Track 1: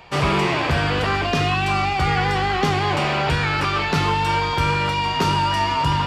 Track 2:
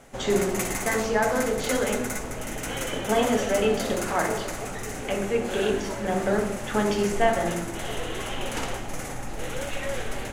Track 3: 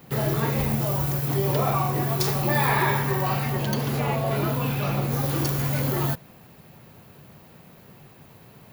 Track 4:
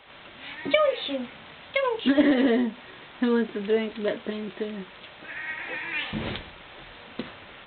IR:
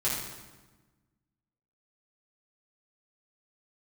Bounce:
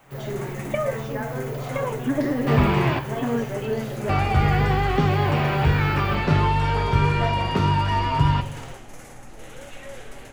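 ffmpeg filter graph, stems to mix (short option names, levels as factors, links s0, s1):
-filter_complex "[0:a]lowshelf=f=230:g=10,adelay=2350,volume=0.944,asplit=3[s0][s1][s2];[s0]atrim=end=2.99,asetpts=PTS-STARTPTS,afade=t=out:st=2.986:d=0.004:c=hsin[s3];[s1]atrim=start=2.99:end=4.09,asetpts=PTS-STARTPTS,volume=0[s4];[s2]atrim=start=4.09,asetpts=PTS-STARTPTS,afade=t=in:d=0.004:c=hsin[s5];[s3][s4][s5]concat=n=3:v=0:a=1,asplit=2[s6][s7];[s7]volume=0.0841[s8];[1:a]volume=0.596[s9];[2:a]volume=0.355,asplit=2[s10][s11];[s11]volume=0.237[s12];[3:a]lowpass=1800,volume=1.19[s13];[4:a]atrim=start_sample=2205[s14];[s8][s12]amix=inputs=2:normalize=0[s15];[s15][s14]afir=irnorm=-1:irlink=0[s16];[s6][s9][s10][s13][s16]amix=inputs=5:normalize=0,flanger=delay=7.1:depth=2.1:regen=-65:speed=0.59:shape=sinusoidal,acrossover=split=3100[s17][s18];[s18]acompressor=threshold=0.00708:ratio=4:attack=1:release=60[s19];[s17][s19]amix=inputs=2:normalize=0"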